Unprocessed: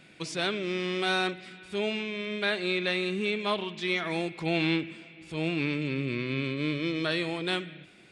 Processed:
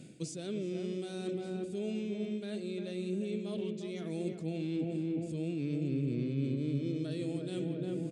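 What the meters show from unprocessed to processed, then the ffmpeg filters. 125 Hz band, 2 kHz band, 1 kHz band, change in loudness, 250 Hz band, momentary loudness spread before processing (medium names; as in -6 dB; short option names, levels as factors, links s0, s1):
-0.5 dB, -22.0 dB, -19.0 dB, -6.5 dB, -2.5 dB, 7 LU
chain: -filter_complex "[0:a]equalizer=f=5200:t=o:w=2:g=6,bandreject=f=5500:w=18,asplit=2[s0][s1];[s1]adelay=352,lowpass=f=1100:p=1,volume=0.531,asplit=2[s2][s3];[s3]adelay=352,lowpass=f=1100:p=1,volume=0.52,asplit=2[s4][s5];[s5]adelay=352,lowpass=f=1100:p=1,volume=0.52,asplit=2[s6][s7];[s7]adelay=352,lowpass=f=1100:p=1,volume=0.52,asplit=2[s8][s9];[s9]adelay=352,lowpass=f=1100:p=1,volume=0.52,asplit=2[s10][s11];[s11]adelay=352,lowpass=f=1100:p=1,volume=0.52,asplit=2[s12][s13];[s13]adelay=352,lowpass=f=1100:p=1,volume=0.52[s14];[s0][s2][s4][s6][s8][s10][s12][s14]amix=inputs=8:normalize=0,areverse,acompressor=threshold=0.0126:ratio=6,areverse,equalizer=f=125:t=o:w=1:g=11,equalizer=f=250:t=o:w=1:g=9,equalizer=f=500:t=o:w=1:g=7,equalizer=f=1000:t=o:w=1:g=-12,equalizer=f=2000:t=o:w=1:g=-9,equalizer=f=4000:t=o:w=1:g=-7,equalizer=f=8000:t=o:w=1:g=8,volume=0.794"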